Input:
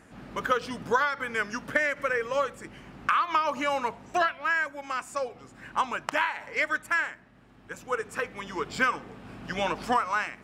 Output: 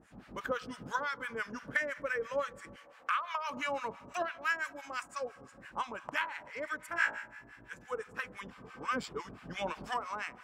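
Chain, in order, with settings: 2.76–3.50 s: brick-wall FIR high-pass 550 Hz; 6.88–7.74 s: flutter echo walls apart 3 m, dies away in 0.61 s; Schroeder reverb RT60 3.9 s, combs from 28 ms, DRR 17 dB; harmonic tremolo 5.9 Hz, depth 100%, crossover 930 Hz; 4.40–5.03 s: treble shelf 3.9 kHz +9.5 dB; 8.50–9.29 s: reverse; trim -3.5 dB

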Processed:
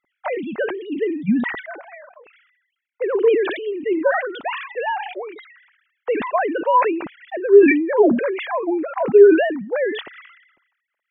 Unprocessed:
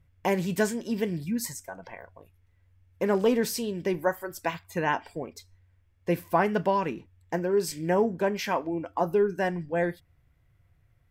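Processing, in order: formants replaced by sine waves; decay stretcher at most 62 dB/s; trim +7.5 dB

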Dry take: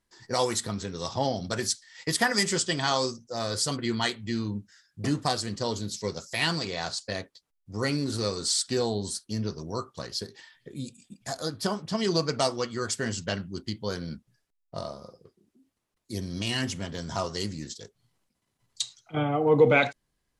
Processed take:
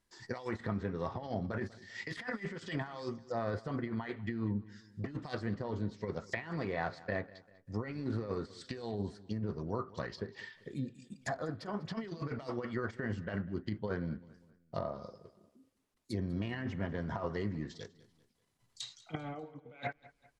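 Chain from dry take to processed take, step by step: compressor with a negative ratio -31 dBFS, ratio -0.5; dynamic bell 1.9 kHz, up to +8 dB, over -54 dBFS, Q 2.3; low-pass that closes with the level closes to 1.3 kHz, closed at -27.5 dBFS; on a send: feedback delay 196 ms, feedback 43%, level -20 dB; on the sum: trim -5 dB

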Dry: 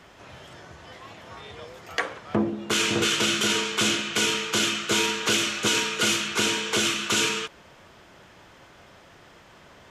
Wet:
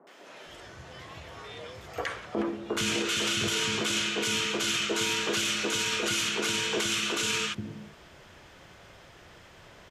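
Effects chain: bass shelf 62 Hz +6 dB; three bands offset in time mids, highs, lows 70/460 ms, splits 240/970 Hz; peak limiter -19 dBFS, peak gain reduction 9 dB

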